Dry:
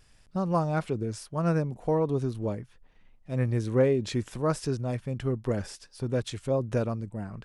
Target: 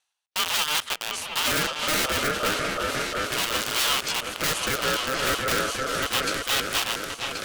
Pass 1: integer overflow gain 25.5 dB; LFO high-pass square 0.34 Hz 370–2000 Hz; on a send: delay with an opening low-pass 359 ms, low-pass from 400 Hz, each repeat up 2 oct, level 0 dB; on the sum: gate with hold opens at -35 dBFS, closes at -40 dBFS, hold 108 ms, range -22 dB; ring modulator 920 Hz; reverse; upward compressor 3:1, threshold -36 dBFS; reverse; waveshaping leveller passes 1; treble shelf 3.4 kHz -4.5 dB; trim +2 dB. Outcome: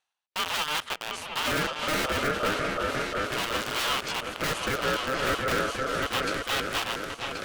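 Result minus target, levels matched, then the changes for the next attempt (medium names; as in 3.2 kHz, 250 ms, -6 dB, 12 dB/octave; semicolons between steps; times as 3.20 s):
8 kHz band -5.0 dB
change: treble shelf 3.4 kHz +6 dB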